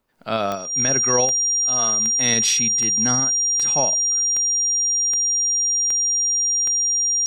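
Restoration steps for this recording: de-click; band-stop 5.7 kHz, Q 30

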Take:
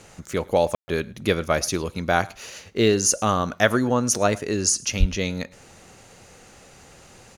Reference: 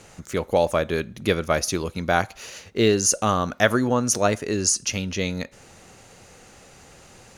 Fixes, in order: 4.99–5.11 s: high-pass 140 Hz 24 dB/octave; room tone fill 0.75–0.88 s; inverse comb 107 ms -24 dB

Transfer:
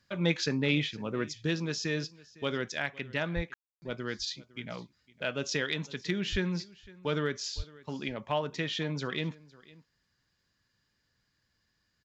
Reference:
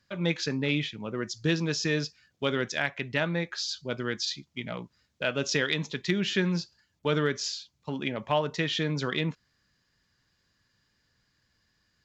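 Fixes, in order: de-plosive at 3.35/3.67/6.31/7.56 s; room tone fill 3.54–3.82 s; inverse comb 507 ms -22 dB; gain correction +4.5 dB, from 1.29 s

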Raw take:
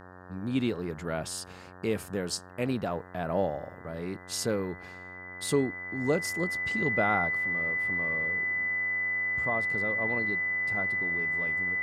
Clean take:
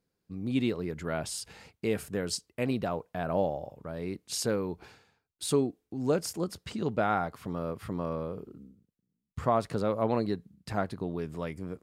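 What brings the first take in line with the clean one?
de-hum 91.2 Hz, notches 20; band-stop 2 kHz, Q 30; gain correction +7 dB, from 7.37 s

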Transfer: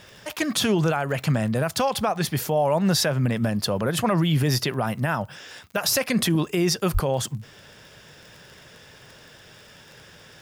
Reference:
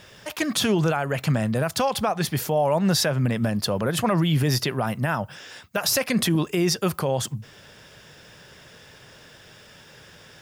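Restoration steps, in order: de-click; 6.93–7.05 s: high-pass 140 Hz 24 dB/octave

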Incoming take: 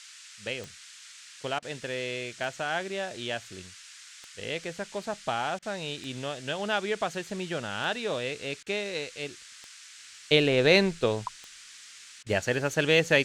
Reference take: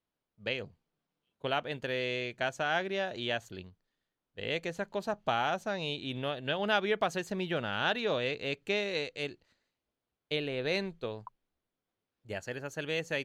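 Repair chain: de-click; interpolate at 1.59/5.59/8.63/12.23 s, 33 ms; noise print and reduce 30 dB; gain correction -11.5 dB, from 9.98 s

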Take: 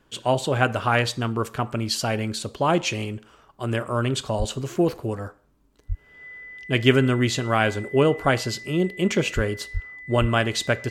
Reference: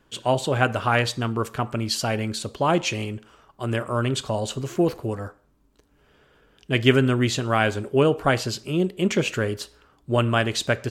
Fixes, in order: band-stop 2 kHz, Q 30; de-plosive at 4.38/5.88/9.35/9.73/10.20 s

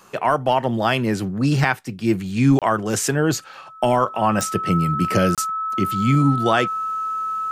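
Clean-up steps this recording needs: de-click; band-stop 1.3 kHz, Q 30; interpolate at 2.59/5.35 s, 27 ms

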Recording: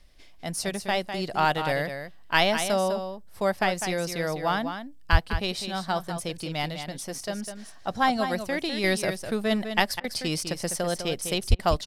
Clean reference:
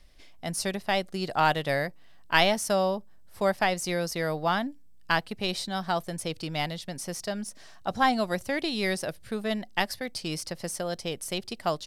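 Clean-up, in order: 5.11–5.23 s: high-pass 140 Hz 24 dB/octave; 11.49–11.61 s: high-pass 140 Hz 24 dB/octave; interpolate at 10.00/11.55 s, 39 ms; inverse comb 202 ms -8.5 dB; 8.84 s: gain correction -4 dB

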